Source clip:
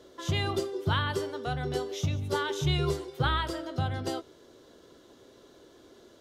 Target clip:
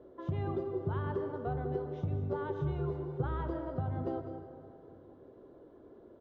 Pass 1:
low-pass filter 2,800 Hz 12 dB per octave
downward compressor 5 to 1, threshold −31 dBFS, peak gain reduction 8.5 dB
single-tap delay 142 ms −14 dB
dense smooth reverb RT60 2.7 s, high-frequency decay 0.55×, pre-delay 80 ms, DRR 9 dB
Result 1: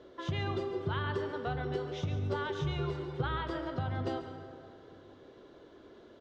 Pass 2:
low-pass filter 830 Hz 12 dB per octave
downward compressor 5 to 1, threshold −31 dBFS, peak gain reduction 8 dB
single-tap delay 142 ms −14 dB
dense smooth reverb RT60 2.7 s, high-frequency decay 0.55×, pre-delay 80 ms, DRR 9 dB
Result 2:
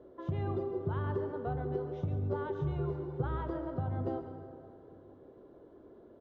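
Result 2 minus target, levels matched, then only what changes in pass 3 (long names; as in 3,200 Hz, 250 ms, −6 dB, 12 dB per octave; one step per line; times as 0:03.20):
echo 56 ms early
change: single-tap delay 198 ms −14 dB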